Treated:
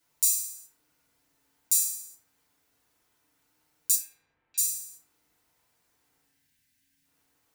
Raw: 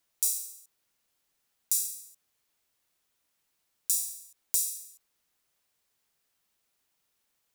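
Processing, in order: 3.95–4.58 s: inverse Chebyshev low-pass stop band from 10 kHz, stop band 70 dB; 6.20–7.05 s: time-frequency box 290–1500 Hz -18 dB; FDN reverb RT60 1.1 s, low-frequency decay 1.5×, high-frequency decay 0.25×, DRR -7.5 dB

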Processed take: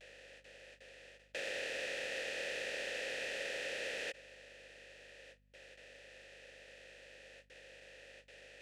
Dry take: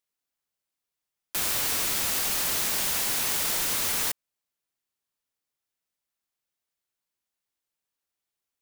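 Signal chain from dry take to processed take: spectral levelling over time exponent 0.4; gate with hold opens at -36 dBFS; low-pass 9.2 kHz 24 dB/octave; reverse; compression 16:1, threshold -36 dBFS, peak gain reduction 13.5 dB; reverse; waveshaping leveller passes 2; in parallel at -4 dB: bit crusher 5-bit; on the sum: vowel filter e; hum 50 Hz, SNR 26 dB; endings held to a fixed fall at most 500 dB/s; trim +2.5 dB

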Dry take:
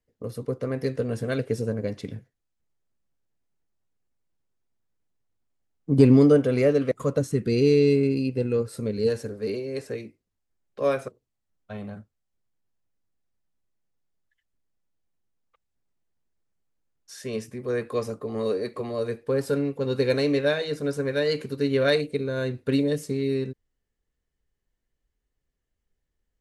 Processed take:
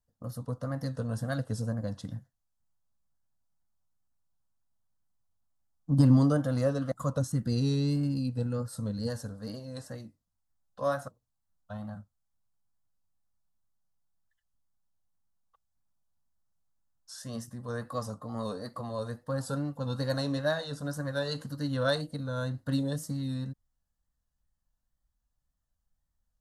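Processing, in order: static phaser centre 970 Hz, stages 4; wow and flutter 69 cents

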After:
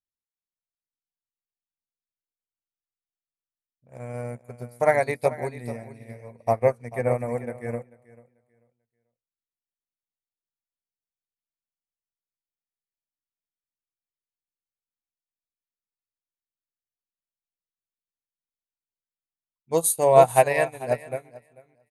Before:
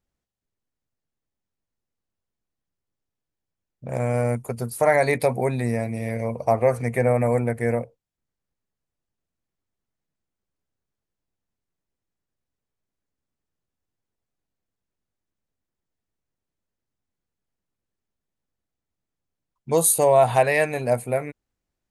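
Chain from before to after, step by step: on a send: feedback delay 441 ms, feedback 27%, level -8 dB; on the sum: upward expansion 2.5:1, over -31 dBFS; trim +3.5 dB

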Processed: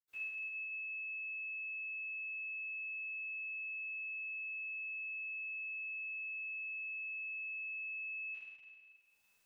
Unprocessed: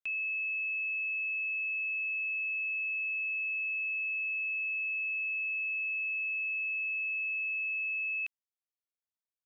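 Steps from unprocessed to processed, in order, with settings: upward compressor, threshold -47 dBFS; reverberation RT60 1.9 s, pre-delay 77 ms, DRR -60 dB; trim +8 dB

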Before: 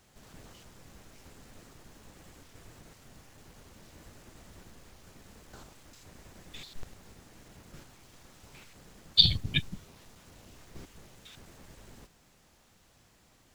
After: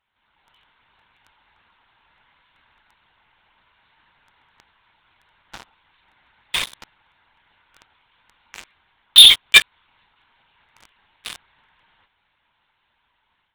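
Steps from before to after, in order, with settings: steep high-pass 730 Hz 48 dB/octave; LPC vocoder at 8 kHz whisper; level rider gain up to 9 dB; waveshaping leveller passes 5; trim +1.5 dB

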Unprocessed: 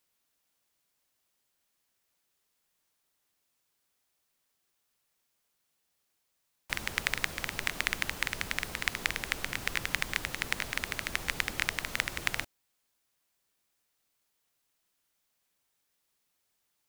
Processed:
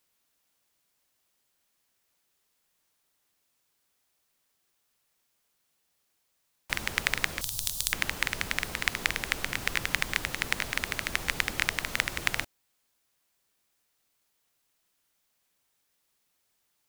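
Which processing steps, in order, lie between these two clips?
7.41–7.93 s: FFT filter 120 Hz 0 dB, 250 Hz -18 dB, 1 kHz -13 dB, 2.1 kHz -24 dB, 3.5 kHz +1 dB, 9.8 kHz +10 dB; trim +3 dB

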